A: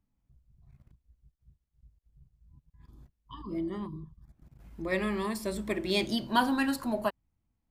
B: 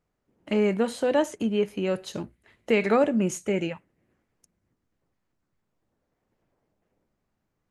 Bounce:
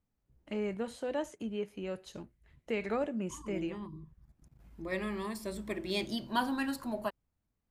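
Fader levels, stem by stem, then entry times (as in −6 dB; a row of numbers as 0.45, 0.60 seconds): −5.5, −12.0 decibels; 0.00, 0.00 seconds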